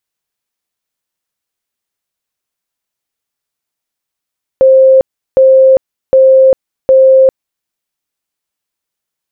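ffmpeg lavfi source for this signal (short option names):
-f lavfi -i "aevalsrc='0.794*sin(2*PI*528*mod(t,0.76))*lt(mod(t,0.76),211/528)':d=3.04:s=44100"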